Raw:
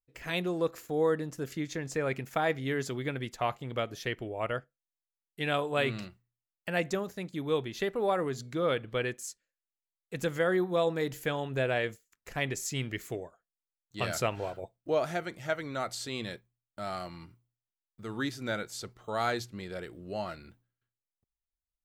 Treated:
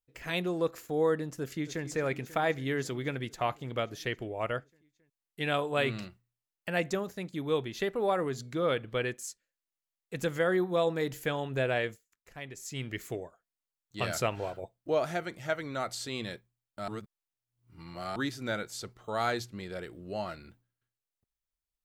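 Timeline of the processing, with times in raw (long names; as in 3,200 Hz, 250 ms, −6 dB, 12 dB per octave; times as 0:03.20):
0:01.37–0:01.85: delay throw 270 ms, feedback 80%, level −14.5 dB
0:11.80–0:13.02: duck −11 dB, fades 0.48 s
0:16.88–0:18.16: reverse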